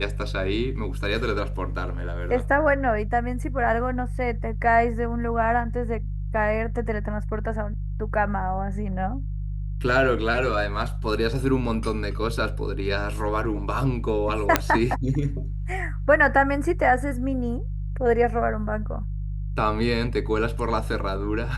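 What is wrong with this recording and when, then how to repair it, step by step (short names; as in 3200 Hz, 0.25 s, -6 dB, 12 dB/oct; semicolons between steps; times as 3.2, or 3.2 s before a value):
hum 50 Hz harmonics 3 -29 dBFS
14.56 pop -2 dBFS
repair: de-click; de-hum 50 Hz, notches 3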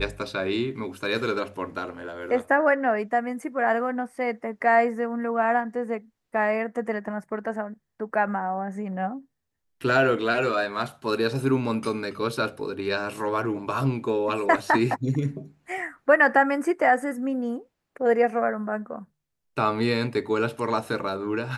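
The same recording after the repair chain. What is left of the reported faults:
none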